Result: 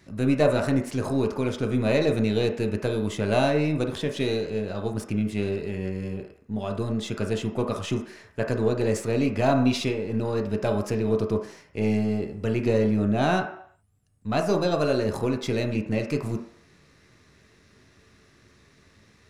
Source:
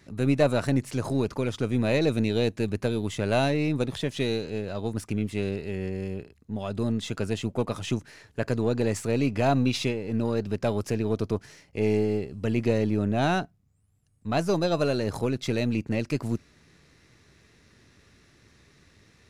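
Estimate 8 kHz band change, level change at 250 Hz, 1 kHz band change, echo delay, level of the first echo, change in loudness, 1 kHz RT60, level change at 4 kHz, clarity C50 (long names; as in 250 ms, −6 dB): 0.0 dB, +1.5 dB, +2.0 dB, no echo audible, no echo audible, +1.5 dB, 0.65 s, 0.0 dB, 8.0 dB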